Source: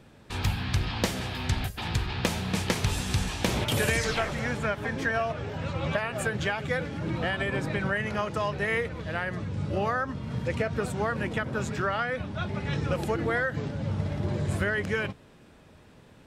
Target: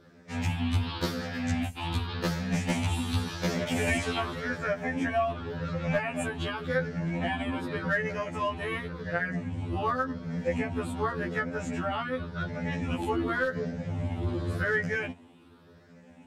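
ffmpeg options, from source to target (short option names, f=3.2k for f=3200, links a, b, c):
-af "afftfilt=real='re*pow(10,9/40*sin(2*PI*(0.59*log(max(b,1)*sr/1024/100)/log(2)-(0.89)*(pts-256)/sr)))':imag='im*pow(10,9/40*sin(2*PI*(0.59*log(max(b,1)*sr/1024/100)/log(2)-(0.89)*(pts-256)/sr)))':win_size=1024:overlap=0.75,highpass=84,highshelf=f=4.1k:g=-6,aeval=exprs='clip(val(0),-1,0.106)':c=same,equalizer=f=240:w=6.7:g=9,afftfilt=real='re*2*eq(mod(b,4),0)':imag='im*2*eq(mod(b,4),0)':win_size=2048:overlap=0.75"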